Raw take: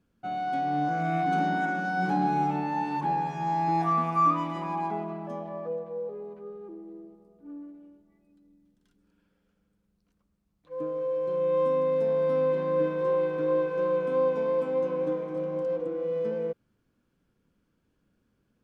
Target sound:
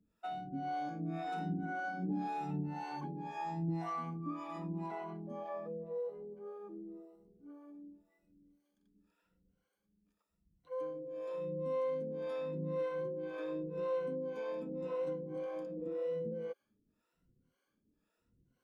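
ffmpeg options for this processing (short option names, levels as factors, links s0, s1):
-filter_complex "[0:a]afftfilt=real='re*pow(10,13/40*sin(2*PI*(2*log(max(b,1)*sr/1024/100)/log(2)-(0.89)*(pts-256)/sr)))':imag='im*pow(10,13/40*sin(2*PI*(2*log(max(b,1)*sr/1024/100)/log(2)-(0.89)*(pts-256)/sr)))':win_size=1024:overlap=0.75,acrossover=split=460|2100[s0][s1][s2];[s0]acompressor=threshold=0.0355:ratio=4[s3];[s1]acompressor=threshold=0.0141:ratio=4[s4];[s2]acompressor=threshold=0.00224:ratio=4[s5];[s3][s4][s5]amix=inputs=3:normalize=0,acrossover=split=430[s6][s7];[s6]aeval=exprs='val(0)*(1-1/2+1/2*cos(2*PI*1.9*n/s))':c=same[s8];[s7]aeval=exprs='val(0)*(1-1/2-1/2*cos(2*PI*1.9*n/s))':c=same[s9];[s8][s9]amix=inputs=2:normalize=0,volume=0.75"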